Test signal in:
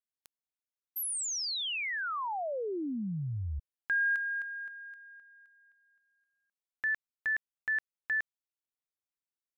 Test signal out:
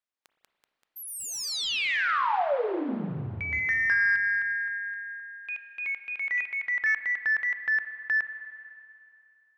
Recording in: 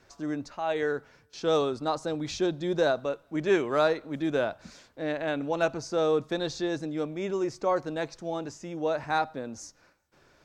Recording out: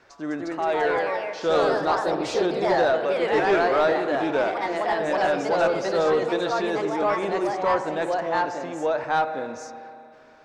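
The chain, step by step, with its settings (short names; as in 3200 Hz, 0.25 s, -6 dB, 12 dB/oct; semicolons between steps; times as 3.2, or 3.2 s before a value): spring tank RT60 2.7 s, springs 30/38/57 ms, chirp 35 ms, DRR 10 dB; echoes that change speed 0.217 s, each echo +2 st, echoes 3; overdrive pedal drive 14 dB, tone 1900 Hz, clips at -10.5 dBFS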